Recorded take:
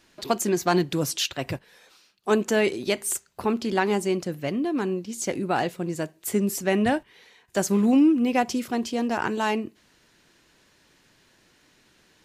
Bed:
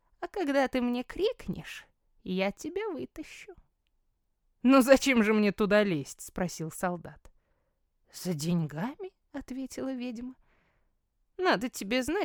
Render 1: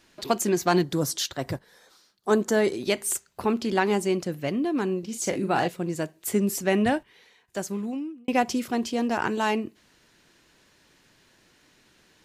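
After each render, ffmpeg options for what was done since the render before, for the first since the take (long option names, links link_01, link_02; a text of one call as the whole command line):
ffmpeg -i in.wav -filter_complex "[0:a]asettb=1/sr,asplit=3[link_01][link_02][link_03];[link_01]atrim=end=0.834[link_04];[link_02]atrim=start=0.83:end=2.73,asetpts=PTS-STARTPTS,afade=type=in:duration=0.004:curve=qsin,afade=type=out:start_time=1.896:duration=0.004:curve=qsin,equalizer=frequency=2600:width=3.3:gain=-12.5[link_05];[link_03]atrim=start=2.726[link_06];[link_04][link_05]acrossfade=duration=0.004:curve1=hsin:curve2=qsin[link_07];[link_07][link_06]acrossfade=duration=0.004:curve1=qsin:curve2=hsin,asettb=1/sr,asplit=3[link_08][link_09][link_10];[link_08]atrim=end=4.994[link_11];[link_09]atrim=start=4.99:end=5.68,asetpts=PTS-STARTPTS,afade=type=in:duration=0.004:curve=qsin,afade=type=out:start_time=0.686:duration=0.004:curve=qsin,asplit=2[link_12][link_13];[link_13]adelay=41,volume=-7dB[link_14];[link_12][link_14]amix=inputs=2:normalize=0,atrim=end_sample=30429[link_15];[link_10]atrim=start=5.676[link_16];[link_11][link_15]acrossfade=duration=0.004:curve1=hsin:curve2=qsin[link_17];[link_17][link_16]acrossfade=duration=0.004:curve1=qsin:curve2=hsin,asplit=2[link_18][link_19];[link_18]atrim=end=8.28,asetpts=PTS-STARTPTS,afade=type=out:start_time=6.78:duration=1.5[link_20];[link_19]atrim=start=8.28,asetpts=PTS-STARTPTS,afade=type=in:duration=0.004:curve=hsin[link_21];[link_20][link_21]concat=n=2:v=0:a=1" out.wav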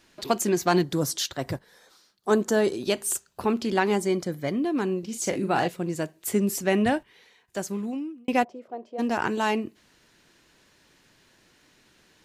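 ffmpeg -i in.wav -filter_complex "[0:a]asettb=1/sr,asplit=3[link_01][link_02][link_03];[link_01]atrim=end=2.494[link_04];[link_02]atrim=start=2.49:end=3.42,asetpts=PTS-STARTPTS,afade=type=in:duration=0.004:curve=qsin,afade=type=out:start_time=0.926:duration=0.004:curve=qsin,equalizer=frequency=2100:width=7.4:gain=-10[link_05];[link_03]atrim=start=3.416[link_06];[link_04][link_05]acrossfade=duration=0.004:curve1=hsin:curve2=qsin[link_07];[link_07][link_06]acrossfade=duration=0.004:curve1=qsin:curve2=hsin,asettb=1/sr,asplit=3[link_08][link_09][link_10];[link_08]atrim=end=3.964[link_11];[link_09]atrim=start=3.96:end=4.56,asetpts=PTS-STARTPTS,afade=type=in:duration=0.004:curve=qsin,afade=type=out:start_time=0.596:duration=0.004:curve=qsin,asuperstop=centerf=2700:order=8:qfactor=6.4[link_12];[link_10]atrim=start=4.556[link_13];[link_11][link_12]acrossfade=duration=0.004:curve1=hsin:curve2=qsin[link_14];[link_14][link_13]acrossfade=duration=0.004:curve1=qsin:curve2=hsin,asplit=3[link_15][link_16][link_17];[link_15]afade=type=out:start_time=8.43:duration=0.02[link_18];[link_16]bandpass=frequency=600:width_type=q:width=3.7,afade=type=in:start_time=8.43:duration=0.02,afade=type=out:start_time=8.98:duration=0.02[link_19];[link_17]afade=type=in:start_time=8.98:duration=0.02[link_20];[link_18][link_19][link_20]amix=inputs=3:normalize=0" out.wav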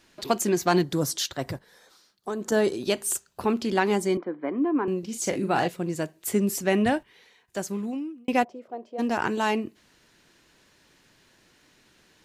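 ffmpeg -i in.wav -filter_complex "[0:a]asettb=1/sr,asplit=3[link_01][link_02][link_03];[link_01]atrim=end=1.434[link_04];[link_02]atrim=start=1.43:end=2.52,asetpts=PTS-STARTPTS,afade=type=in:duration=0.004:curve=qsin,afade=type=out:start_time=1.086:duration=0.004:curve=qsin,acompressor=threshold=-27dB:ratio=6:attack=3.2:release=140:knee=1:detection=peak[link_05];[link_03]atrim=start=2.516[link_06];[link_04][link_05]acrossfade=duration=0.004:curve1=hsin:curve2=qsin[link_07];[link_07][link_06]acrossfade=duration=0.004:curve1=qsin:curve2=hsin,asettb=1/sr,asplit=3[link_08][link_09][link_10];[link_08]atrim=end=4.174[link_11];[link_09]atrim=start=4.17:end=4.88,asetpts=PTS-STARTPTS,afade=type=in:duration=0.004:curve=qsin,afade=type=out:start_time=0.706:duration=0.004:curve=qsin,highpass=frequency=260:width=0.5412,highpass=frequency=260:width=1.3066,equalizer=frequency=290:width_type=q:width=4:gain=5,equalizer=frequency=610:width_type=q:width=4:gain=-4,equalizer=frequency=1000:width_type=q:width=4:gain=7,equalizer=frequency=1900:width_type=q:width=4:gain=-4,lowpass=frequency=2100:width=0.5412,lowpass=frequency=2100:width=1.3066[link_12];[link_10]atrim=start=4.876[link_13];[link_11][link_12]acrossfade=duration=0.004:curve1=hsin:curve2=qsin[link_14];[link_14][link_13]acrossfade=duration=0.004:curve1=qsin:curve2=hsin" out.wav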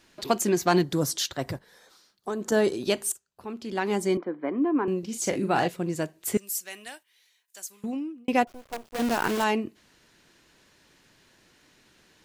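ffmpeg -i in.wav -filter_complex "[0:a]asettb=1/sr,asplit=3[link_01][link_02][link_03];[link_01]atrim=end=6.374[link_04];[link_02]atrim=start=6.37:end=7.84,asetpts=PTS-STARTPTS,afade=type=in:duration=0.004:curve=qsin,afade=type=out:start_time=1.466:duration=0.004:curve=qsin,aderivative[link_05];[link_03]atrim=start=7.836[link_06];[link_04][link_05]acrossfade=duration=0.004:curve1=hsin:curve2=qsin[link_07];[link_07][link_06]acrossfade=duration=0.004:curve1=qsin:curve2=hsin,asettb=1/sr,asplit=3[link_08][link_09][link_10];[link_08]atrim=end=8.474[link_11];[link_09]atrim=start=8.47:end=9.44,asetpts=PTS-STARTPTS,afade=type=in:duration=0.004:curve=qsin,afade=type=out:start_time=0.966:duration=0.004:curve=qsin,acrusher=bits=6:dc=4:mix=0:aa=0.000001[link_12];[link_10]atrim=start=9.436[link_13];[link_11][link_12]acrossfade=duration=0.004:curve1=hsin:curve2=qsin[link_14];[link_14][link_13]acrossfade=duration=0.004:curve1=qsin:curve2=hsin,asplit=2[link_15][link_16];[link_15]atrim=end=3.12,asetpts=PTS-STARTPTS,afade=type=out:start_time=3.116:duration=0.004:curve=hsin:silence=0.105925[link_17];[link_16]atrim=start=3.12,asetpts=PTS-STARTPTS,afade=type=in:duration=0.97:curve=qua:silence=0.105925[link_18];[link_17][link_18]concat=n=2:v=0:a=1" out.wav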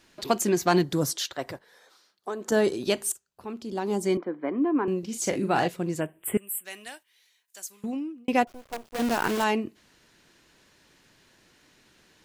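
ffmpeg -i in.wav -filter_complex "[0:a]asettb=1/sr,asplit=3[link_01][link_02][link_03];[link_01]atrim=end=1.134[link_04];[link_02]atrim=start=1.13:end=2.49,asetpts=PTS-STARTPTS,afade=type=in:duration=0.004:curve=qsin,afade=type=out:start_time=1.356:duration=0.004:curve=qsin,bass=frequency=250:gain=-12,treble=frequency=4000:gain=-4[link_05];[link_03]atrim=start=2.486[link_06];[link_04][link_05]acrossfade=duration=0.004:curve1=hsin:curve2=qsin[link_07];[link_07][link_06]acrossfade=duration=0.004:curve1=qsin:curve2=hsin,asettb=1/sr,asplit=3[link_08][link_09][link_10];[link_08]atrim=end=3.624[link_11];[link_09]atrim=start=3.62:end=4.04,asetpts=PTS-STARTPTS,afade=type=in:duration=0.004:curve=qsin,afade=type=out:start_time=0.416:duration=0.004:curve=qsin,equalizer=frequency=2000:width=1.1:gain=-13[link_12];[link_10]atrim=start=4.036[link_13];[link_11][link_12]acrossfade=duration=0.004:curve1=hsin:curve2=qsin[link_14];[link_14][link_13]acrossfade=duration=0.004:curve1=qsin:curve2=hsin,asplit=3[link_15][link_16][link_17];[link_15]afade=type=out:start_time=5.99:duration=0.02[link_18];[link_16]asuperstop=centerf=5200:order=12:qfactor=1.1,afade=type=in:start_time=5.99:duration=0.02,afade=type=out:start_time=6.64:duration=0.02[link_19];[link_17]afade=type=in:start_time=6.64:duration=0.02[link_20];[link_18][link_19][link_20]amix=inputs=3:normalize=0" out.wav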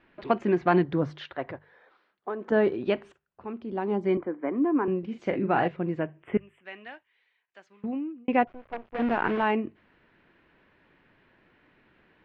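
ffmpeg -i in.wav -af "lowpass=frequency=2500:width=0.5412,lowpass=frequency=2500:width=1.3066,bandreject=frequency=50:width_type=h:width=6,bandreject=frequency=100:width_type=h:width=6,bandreject=frequency=150:width_type=h:width=6" out.wav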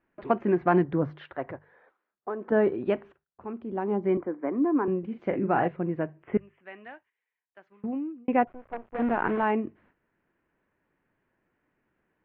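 ffmpeg -i in.wav -af "agate=range=-12dB:threshold=-59dB:ratio=16:detection=peak,lowpass=1900" out.wav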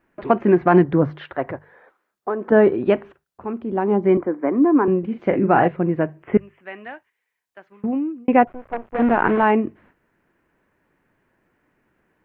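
ffmpeg -i in.wav -af "volume=9dB,alimiter=limit=-3dB:level=0:latency=1" out.wav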